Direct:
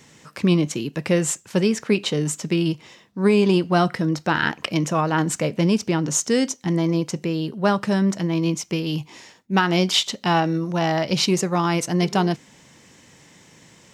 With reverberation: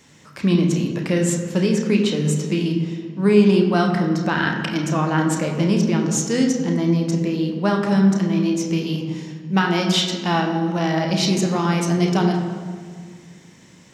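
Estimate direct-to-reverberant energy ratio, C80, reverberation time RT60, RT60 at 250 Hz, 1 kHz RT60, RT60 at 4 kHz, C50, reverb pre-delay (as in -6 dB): 1.5 dB, 6.5 dB, 1.9 s, 2.4 s, 1.8 s, 1.3 s, 5.0 dB, 3 ms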